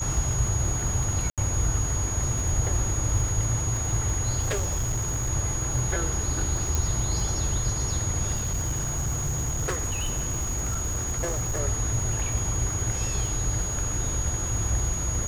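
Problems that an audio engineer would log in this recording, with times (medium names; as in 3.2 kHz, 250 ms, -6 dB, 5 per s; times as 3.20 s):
crackle 72 per s -31 dBFS
whine 6.7 kHz -30 dBFS
1.30–1.38 s: dropout 77 ms
4.42–5.30 s: clipped -22.5 dBFS
6.75 s: pop
8.34–11.60 s: clipped -23.5 dBFS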